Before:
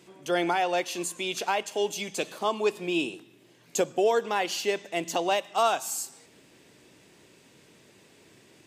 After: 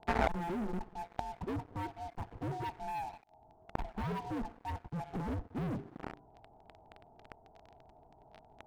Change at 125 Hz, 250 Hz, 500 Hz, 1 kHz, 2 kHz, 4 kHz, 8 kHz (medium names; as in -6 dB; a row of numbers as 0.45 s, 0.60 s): +6.0 dB, -5.5 dB, -15.5 dB, -10.0 dB, -13.0 dB, -21.5 dB, -28.5 dB